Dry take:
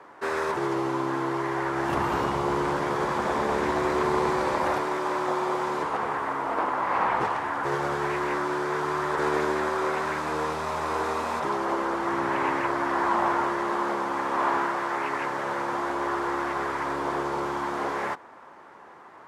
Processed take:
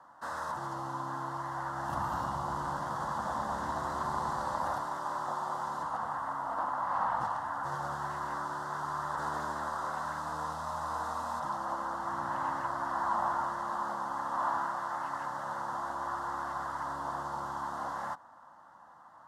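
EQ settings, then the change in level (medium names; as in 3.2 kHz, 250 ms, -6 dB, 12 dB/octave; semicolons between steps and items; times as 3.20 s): static phaser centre 980 Hz, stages 4; -5.5 dB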